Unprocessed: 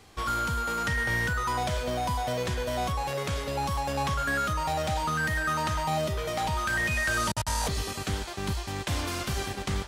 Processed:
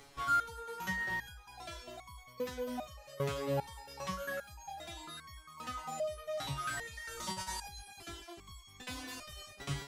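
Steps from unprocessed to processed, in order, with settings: reverb removal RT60 0.57 s; upward compressor, threshold -44 dBFS; resonator arpeggio 2.5 Hz 140–1100 Hz; trim +4.5 dB

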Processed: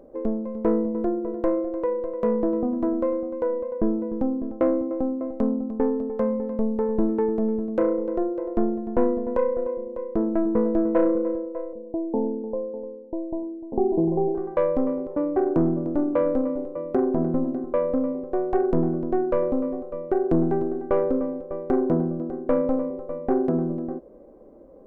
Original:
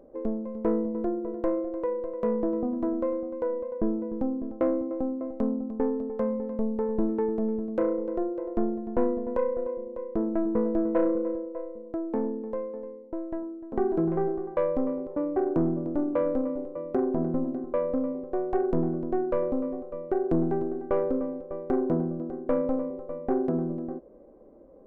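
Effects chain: 11.73–14.35 s: elliptic low-pass 920 Hz, stop band 40 dB; trim +4 dB

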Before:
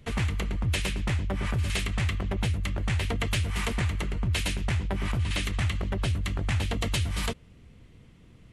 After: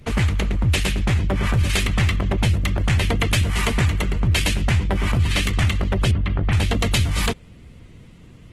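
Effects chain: 6.11–6.53 s: distance through air 340 m; trim +8.5 dB; Opus 16 kbps 48 kHz

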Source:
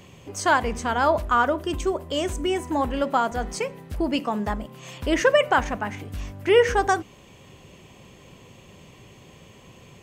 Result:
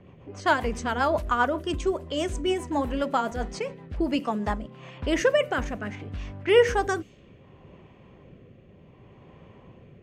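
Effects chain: level-controlled noise filter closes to 1.4 kHz, open at -20.5 dBFS; rotary cabinet horn 7.5 Hz, later 0.65 Hz, at 3.97 s

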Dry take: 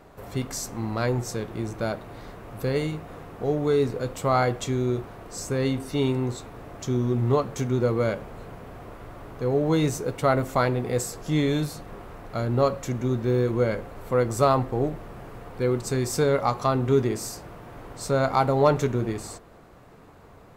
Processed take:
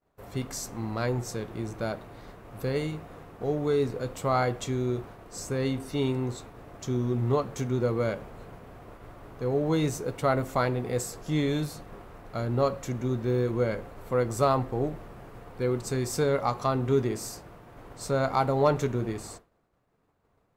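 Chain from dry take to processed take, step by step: expander -38 dBFS; trim -3.5 dB

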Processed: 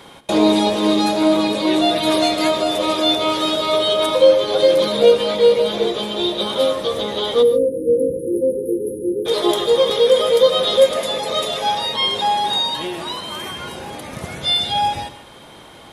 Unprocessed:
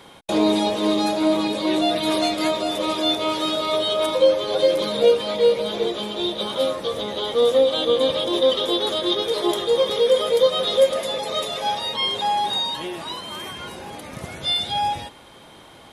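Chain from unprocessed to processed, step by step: spectral selection erased 7.42–9.26 s, 530–9200 Hz; gated-style reverb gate 170 ms rising, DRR 12 dB; trim +4 dB

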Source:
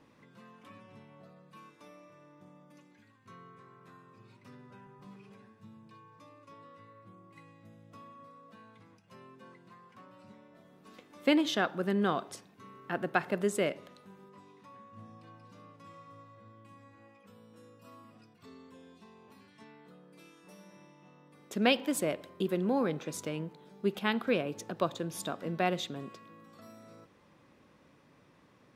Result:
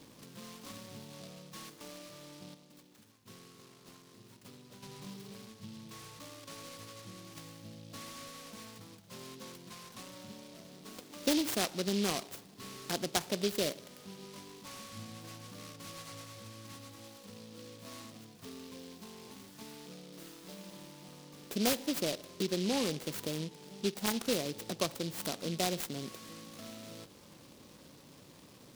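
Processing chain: 2.54–4.83 s: harmonic-percussive split harmonic -11 dB; compression 1.5:1, threshold -52 dBFS, peak gain reduction 11.5 dB; delay time shaken by noise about 3.8 kHz, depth 0.16 ms; trim +6.5 dB

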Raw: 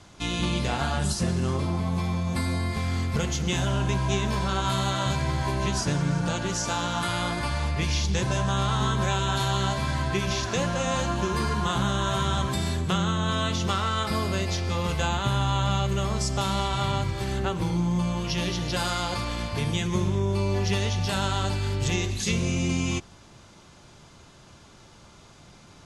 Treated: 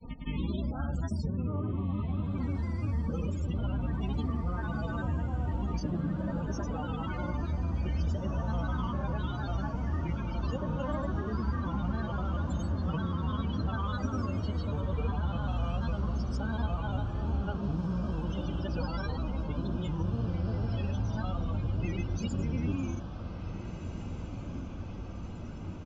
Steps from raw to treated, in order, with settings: bass shelf 370 Hz +12 dB; comb 3.7 ms, depth 55%; granulator, pitch spread up and down by 3 st; loudest bins only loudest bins 32; compression 2:1, threshold -41 dBFS, peak gain reduction 15.5 dB; on a send: echo that smears into a reverb 1759 ms, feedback 73%, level -10 dB

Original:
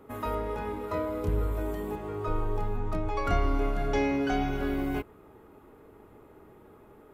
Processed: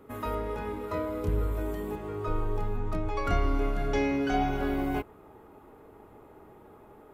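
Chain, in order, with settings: peaking EQ 790 Hz -2.5 dB, from 4.34 s +5 dB

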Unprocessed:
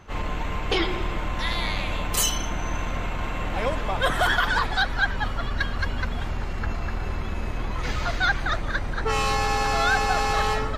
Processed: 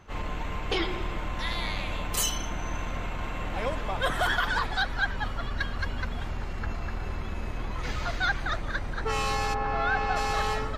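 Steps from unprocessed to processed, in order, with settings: 9.53–10.15 s: low-pass 1.5 kHz -> 3.4 kHz 12 dB/octave; trim -4.5 dB

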